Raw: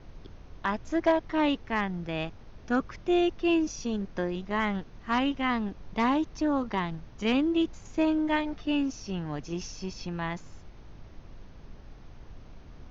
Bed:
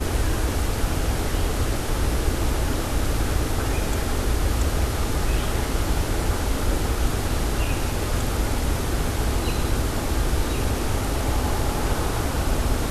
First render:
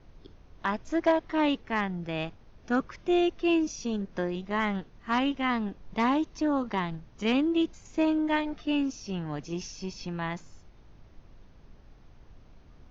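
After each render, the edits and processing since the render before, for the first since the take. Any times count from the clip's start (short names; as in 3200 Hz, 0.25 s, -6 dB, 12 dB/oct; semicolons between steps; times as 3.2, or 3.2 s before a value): noise print and reduce 6 dB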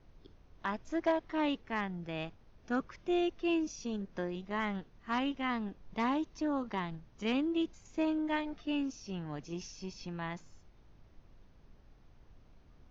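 gain -6.5 dB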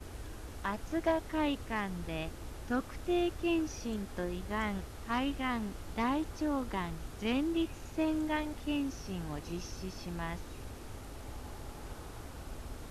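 add bed -22 dB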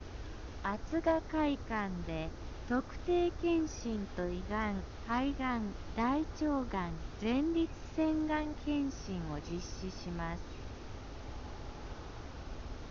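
steep low-pass 6400 Hz 96 dB/oct; dynamic EQ 2900 Hz, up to -6 dB, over -55 dBFS, Q 1.6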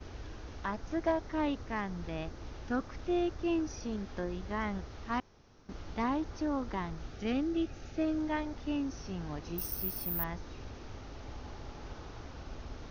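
5.2–5.69 room tone; 7.1–8.18 Butterworth band-stop 1000 Hz, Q 4; 9.58–10.24 careless resampling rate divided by 3×, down none, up zero stuff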